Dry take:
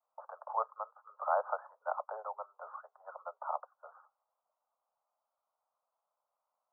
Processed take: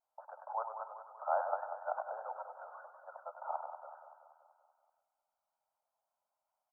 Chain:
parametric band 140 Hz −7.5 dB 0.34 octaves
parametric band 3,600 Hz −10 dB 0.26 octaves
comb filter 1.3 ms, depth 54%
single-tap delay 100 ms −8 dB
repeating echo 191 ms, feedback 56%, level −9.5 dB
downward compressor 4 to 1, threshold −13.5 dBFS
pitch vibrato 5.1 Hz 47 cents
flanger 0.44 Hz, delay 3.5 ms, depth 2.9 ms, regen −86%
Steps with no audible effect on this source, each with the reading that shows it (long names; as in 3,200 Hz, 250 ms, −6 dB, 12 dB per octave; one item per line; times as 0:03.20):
parametric band 140 Hz: nothing at its input below 400 Hz
parametric band 3,600 Hz: nothing at its input above 1,600 Hz
downward compressor, threshold −13.5 dBFS: peak of its input −15.5 dBFS